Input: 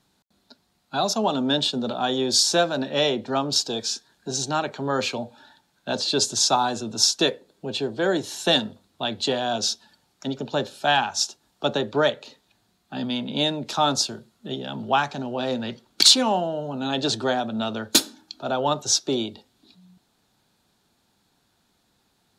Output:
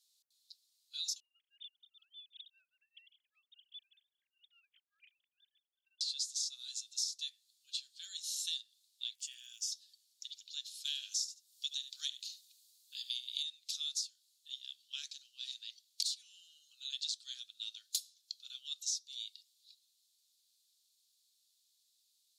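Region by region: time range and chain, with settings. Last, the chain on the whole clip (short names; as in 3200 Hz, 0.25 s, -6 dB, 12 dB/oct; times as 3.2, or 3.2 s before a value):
1.2–6.01 sine-wave speech + compressor 2:1, threshold -43 dBFS + beating tremolo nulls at 5 Hz
9.14–9.71 fixed phaser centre 1100 Hz, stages 6 + crackle 110/s -48 dBFS
10.85–13.43 tilt +3 dB/oct + echo 72 ms -13.5 dB
whole clip: inverse Chebyshev high-pass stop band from 890 Hz, stop band 70 dB; compressor 8:1, threshold -33 dBFS; gain -2 dB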